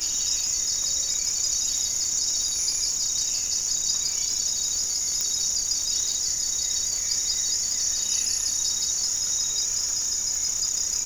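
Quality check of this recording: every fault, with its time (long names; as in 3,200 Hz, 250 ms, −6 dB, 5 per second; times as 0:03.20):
surface crackle 370 per second −31 dBFS
0:05.21: click −11 dBFS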